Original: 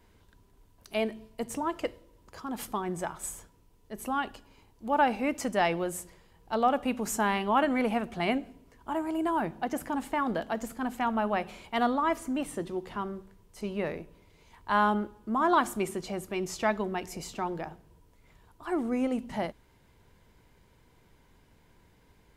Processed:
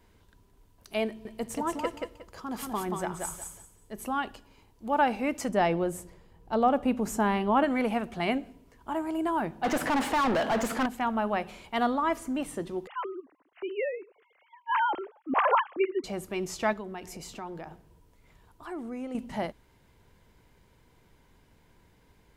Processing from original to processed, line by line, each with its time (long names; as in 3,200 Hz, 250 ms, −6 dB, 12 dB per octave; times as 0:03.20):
0:01.07–0:04.03: repeating echo 181 ms, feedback 23%, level −4 dB
0:05.49–0:07.64: tilt shelving filter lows +4.5 dB
0:09.64–0:10.86: mid-hump overdrive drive 30 dB, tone 2,300 Hz, clips at −19 dBFS
0:12.87–0:16.04: three sine waves on the formant tracks
0:16.73–0:19.15: downward compressor 2 to 1, threshold −40 dBFS